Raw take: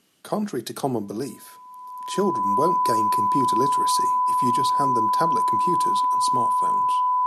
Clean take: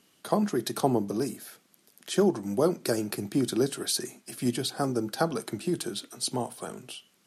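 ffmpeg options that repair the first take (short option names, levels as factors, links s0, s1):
-af "bandreject=f=1000:w=30"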